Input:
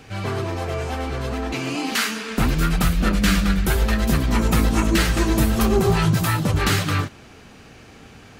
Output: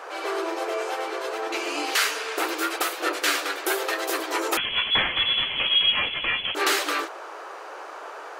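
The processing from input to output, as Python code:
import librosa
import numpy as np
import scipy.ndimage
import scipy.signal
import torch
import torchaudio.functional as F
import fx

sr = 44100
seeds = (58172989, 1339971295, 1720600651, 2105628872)

y = fx.dmg_noise_band(x, sr, seeds[0], low_hz=410.0, high_hz=1500.0, level_db=-39.0)
y = fx.brickwall_highpass(y, sr, low_hz=300.0)
y = fx.freq_invert(y, sr, carrier_hz=3700, at=(4.57, 6.55))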